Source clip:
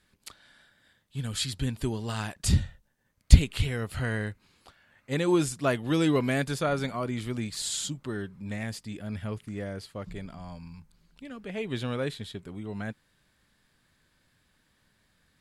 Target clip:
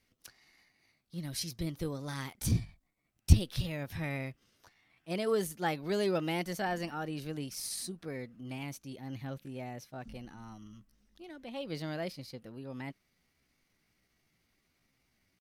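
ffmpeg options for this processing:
-af "asetrate=55563,aresample=44100,atempo=0.793701,volume=-6.5dB"

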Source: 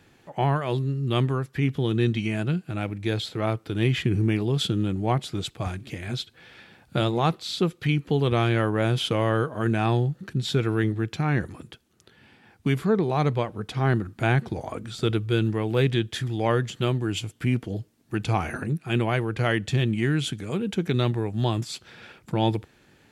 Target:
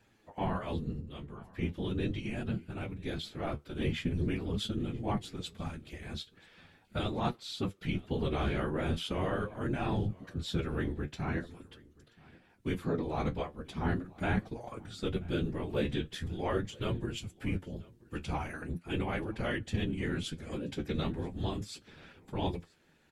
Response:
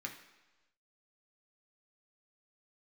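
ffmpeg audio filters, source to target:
-filter_complex "[0:a]asettb=1/sr,asplit=3[a][b][c];[a]atrim=end=1.004[d];[b]atrim=start=1:end=1.59,asetpts=PTS-STARTPTS,afade=t=in:d=0.004:c=qsin,afade=t=out:st=0.586:d=0.004:c=qsin,acompressor=threshold=-38dB:ratio=2.5[e];[c]atrim=start=1.586[f];[d][e]acrossfade=d=0.004:c1=hsin:c2=qsin[g];[g][f]acrossfade=d=0.004:c1=qsin:c2=hsin,asettb=1/sr,asplit=3[h][i][j];[h]atrim=end=20.244[k];[i]atrim=start=20.24:end=20.99,asetpts=PTS-STARTPTS,afade=t=in:d=0.004:c=qsin,afade=t=out:st=0.746:d=0.004:c=qsin,equalizer=f=5k:w=4.4:g=7[l];[j]atrim=start=20.986[m];[k][l]acrossfade=d=0.004:c1=hsin:c2=qsin[n];[n][m]acrossfade=d=0.004:c1=qsin:c2=hsin,afftfilt=real='hypot(re,im)*cos(2*PI*random(0))':imag='hypot(re,im)*sin(2*PI*random(1))':win_size=512:overlap=0.75,flanger=delay=8.3:depth=5.8:regen=45:speed=0.41:shape=triangular,aecho=1:1:981:0.0631"

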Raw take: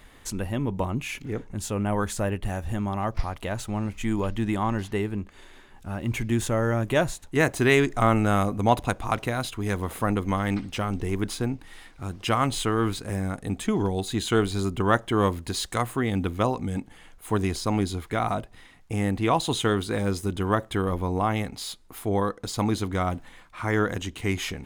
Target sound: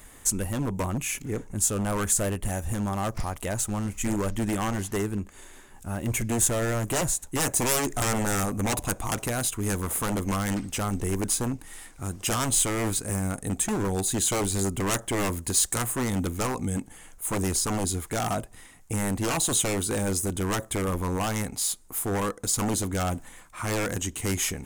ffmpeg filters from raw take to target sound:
-af "acontrast=55,aeval=exprs='0.168*(abs(mod(val(0)/0.168+3,4)-2)-1)':c=same,highshelf=f=5.6k:t=q:w=1.5:g=10.5,volume=-5.5dB"

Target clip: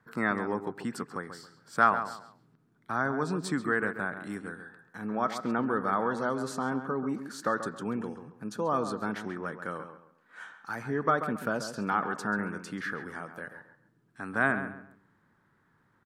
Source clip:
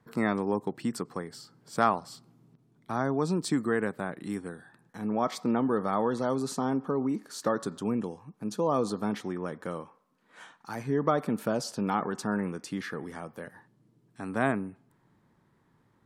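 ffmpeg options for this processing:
-filter_complex "[0:a]equalizer=f=1.5k:w=2:g=12,asplit=2[a][b];[b]adelay=136,lowpass=f=2.8k:p=1,volume=-9.5dB,asplit=2[c][d];[d]adelay=136,lowpass=f=2.8k:p=1,volume=0.3,asplit=2[e][f];[f]adelay=136,lowpass=f=2.8k:p=1,volume=0.3[g];[c][e][g]amix=inputs=3:normalize=0[h];[a][h]amix=inputs=2:normalize=0,volume=-4dB"

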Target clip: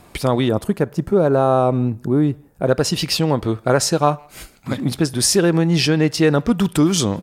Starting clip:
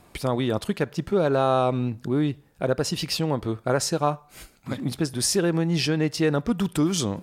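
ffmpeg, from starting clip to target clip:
-filter_complex "[0:a]asettb=1/sr,asplit=3[a][b][c];[a]atrim=end=0.494[d];[b]atrim=start=0.49:end=2.67,asetpts=PTS-STARTPTS,afade=t=in:d=0.004:c=qsin,afade=t=out:st=2.176:d=0.004:c=qsin,equalizer=f=3.4k:t=o:w=2:g=-12.5[e];[c]atrim=start=2.666[f];[d][e]acrossfade=d=0.004:c1=hsin:c2=qsin[g];[g][f]acrossfade=d=0.004:c1=qsin:c2=hsin,asplit=2[h][i];[i]adelay=160,highpass=300,lowpass=3.4k,asoftclip=type=hard:threshold=-18dB,volume=-28dB[j];[h][j]amix=inputs=2:normalize=0,volume=7dB"

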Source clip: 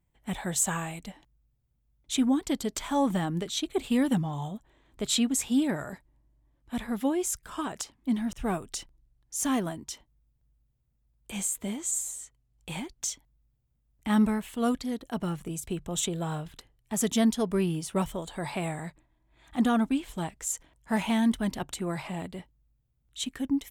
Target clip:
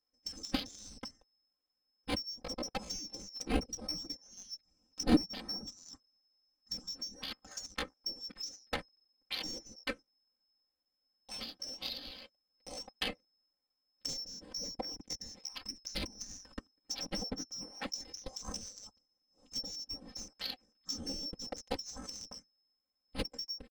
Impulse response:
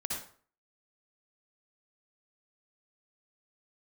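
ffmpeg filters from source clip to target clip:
-filter_complex "[0:a]afftfilt=real='real(if(lt(b,736),b+184*(1-2*mod(floor(b/184),2)),b),0)':imag='imag(if(lt(b,736),b+184*(1-2*mod(floor(b/184),2)),b),0)':win_size=2048:overlap=0.75,tiltshelf=f=1.2k:g=3.5,aecho=1:1:5:0.99,adynamicequalizer=threshold=0.00355:dfrequency=280:dqfactor=0.74:tfrequency=280:tqfactor=0.74:attack=5:release=100:ratio=0.375:range=1.5:mode=boostabove:tftype=bell,acrossover=split=530[a][b];[b]acompressor=threshold=-35dB:ratio=16[c];[a][c]amix=inputs=2:normalize=0,asetrate=57191,aresample=44100,atempo=0.771105,adynamicsmooth=sensitivity=6.5:basefreq=1.9k,volume=5dB"

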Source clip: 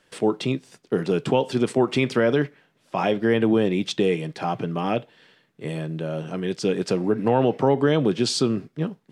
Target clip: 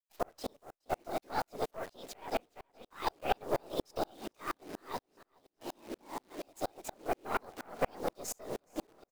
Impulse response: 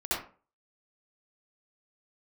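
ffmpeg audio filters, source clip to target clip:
-filter_complex "[0:a]agate=range=-15dB:threshold=-47dB:ratio=16:detection=peak,highpass=110,asetrate=64194,aresample=44100,atempo=0.686977,afftfilt=real='hypot(re,im)*cos(2*PI*random(0))':imag='hypot(re,im)*sin(2*PI*random(1))':win_size=512:overlap=0.75,afreqshift=79,aeval=exprs='(tanh(8.91*val(0)+0.75)-tanh(0.75))/8.91':c=same,acrusher=bits=8:dc=4:mix=0:aa=0.000001,asplit=2[a][b];[b]aecho=0:1:420|840|1260|1680:0.0944|0.0519|0.0286|0.0157[c];[a][c]amix=inputs=2:normalize=0,aeval=exprs='val(0)*pow(10,-39*if(lt(mod(-4.2*n/s,1),2*abs(-4.2)/1000),1-mod(-4.2*n/s,1)/(2*abs(-4.2)/1000),(mod(-4.2*n/s,1)-2*abs(-4.2)/1000)/(1-2*abs(-4.2)/1000))/20)':c=same,volume=2.5dB"

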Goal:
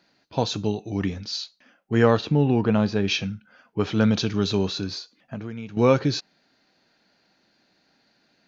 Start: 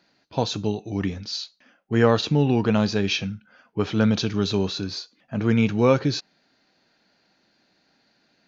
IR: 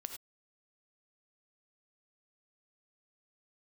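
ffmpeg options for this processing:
-filter_complex "[0:a]asettb=1/sr,asplit=3[a][b][c];[a]atrim=end=2.174[d];[b]atrim=start=2.17:end=3.08,asetpts=PTS-STARTPTS,afade=t=in:d=0.004:c=qsin,afade=t=out:st=0.906:d=0.004:c=qsin,lowpass=f=2k:p=1[e];[c]atrim=start=3.076[f];[d][e]acrossfade=d=0.004:c1=hsin:c2=qsin[g];[g][f]acrossfade=d=0.004:c1=qsin:c2=hsin,asettb=1/sr,asplit=3[h][i][j];[h]atrim=end=4.934[k];[i]atrim=start=4.93:end=5.77,asetpts=PTS-STARTPTS,afade=t=in:d=0.004:c=qsin,afade=t=out:st=0.836:d=0.004:c=qsin,acompressor=threshold=-30dB:ratio=20[l];[j]atrim=start=5.766[m];[k][l]acrossfade=d=0.004:c1=hsin:c2=qsin[n];[n][m]acrossfade=d=0.004:c1=qsin:c2=hsin"

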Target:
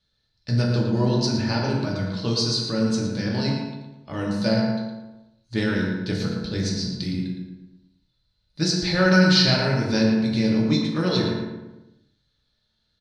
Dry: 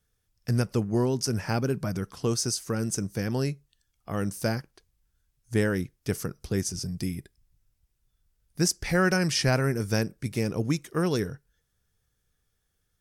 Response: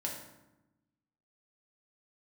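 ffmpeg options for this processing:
-filter_complex "[0:a]lowpass=f=4.1k:t=q:w=13,asplit=2[a][b];[b]adelay=113,lowpass=f=2.4k:p=1,volume=-4dB,asplit=2[c][d];[d]adelay=113,lowpass=f=2.4k:p=1,volume=0.5,asplit=2[e][f];[f]adelay=113,lowpass=f=2.4k:p=1,volume=0.5,asplit=2[g][h];[h]adelay=113,lowpass=f=2.4k:p=1,volume=0.5,asplit=2[i][j];[j]adelay=113,lowpass=f=2.4k:p=1,volume=0.5,asplit=2[k][l];[l]adelay=113,lowpass=f=2.4k:p=1,volume=0.5[m];[a][c][e][g][i][k][m]amix=inputs=7:normalize=0[n];[1:a]atrim=start_sample=2205,afade=t=out:st=0.34:d=0.01,atrim=end_sample=15435[o];[n][o]afir=irnorm=-1:irlink=0"

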